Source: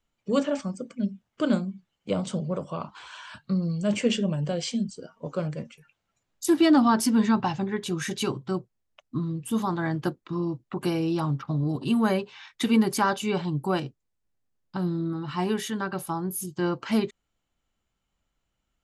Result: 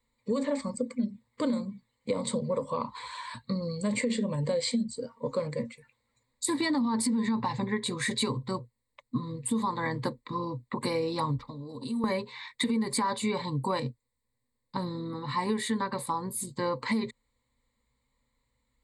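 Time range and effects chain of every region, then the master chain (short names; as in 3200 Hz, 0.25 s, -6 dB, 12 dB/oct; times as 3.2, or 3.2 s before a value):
11.36–12.04 HPF 410 Hz 6 dB/oct + bell 1600 Hz -10 dB 1.5 oct + compressor, threshold -36 dBFS
whole clip: ripple EQ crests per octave 0.98, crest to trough 17 dB; limiter -15 dBFS; compressor, threshold -25 dBFS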